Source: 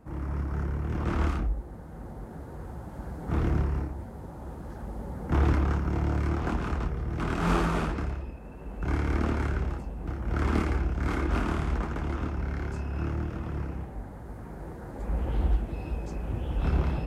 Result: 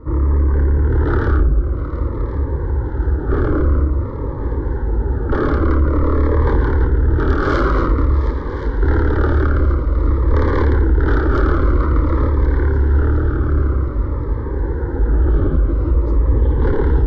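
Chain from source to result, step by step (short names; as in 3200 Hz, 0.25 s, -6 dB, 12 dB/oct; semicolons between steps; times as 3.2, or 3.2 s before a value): LPF 3100 Hz 24 dB/oct; low shelf 380 Hz +5 dB; sine folder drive 14 dB, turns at -8.5 dBFS; fixed phaser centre 700 Hz, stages 6; multi-head echo 0.357 s, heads second and third, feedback 59%, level -13.5 dB; cascading phaser falling 0.5 Hz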